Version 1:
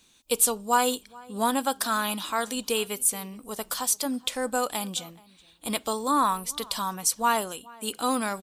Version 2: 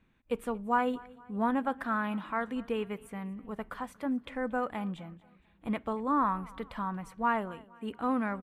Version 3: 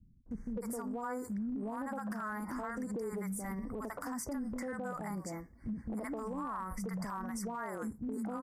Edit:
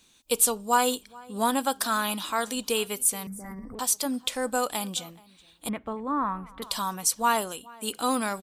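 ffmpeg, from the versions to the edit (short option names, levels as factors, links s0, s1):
-filter_complex "[0:a]asplit=3[s0][s1][s2];[s0]atrim=end=3.272[s3];[2:a]atrim=start=3.268:end=3.792[s4];[s1]atrim=start=3.788:end=5.692[s5];[1:a]atrim=start=5.688:end=6.622[s6];[s2]atrim=start=6.618[s7];[s3][s4]acrossfade=d=0.004:c1=hsin:c2=hsin[s8];[s8][s5]acrossfade=d=0.004:c1=hsin:c2=hsin[s9];[s9][s6]acrossfade=d=0.004:c1=hsin:c2=hsin[s10];[s10][s7]acrossfade=d=0.004:c1=hsin:c2=hsin"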